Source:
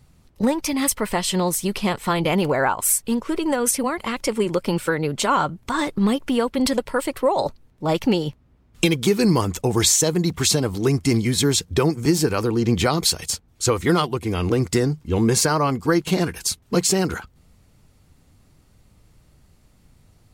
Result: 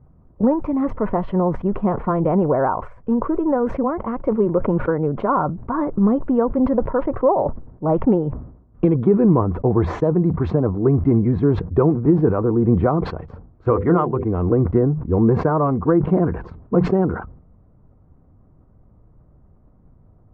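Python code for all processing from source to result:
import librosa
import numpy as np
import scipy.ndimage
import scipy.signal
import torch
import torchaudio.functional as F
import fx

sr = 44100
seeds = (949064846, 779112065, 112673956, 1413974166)

y = fx.chain(x, sr, fx.lowpass(hz=3200.0, slope=24),
    fx.high_shelf(hz=2200.0, db=10.5),
    fx.hum_notches(base_hz=50, count=10), at=(13.66, 14.24))
y = scipy.signal.sosfilt(scipy.signal.butter(4, 1100.0, 'lowpass', fs=sr, output='sos'), y)
y = fx.notch(y, sr, hz=850.0, q=12.0)
y = fx.sustainer(y, sr, db_per_s=89.0)
y = y * librosa.db_to_amplitude(3.0)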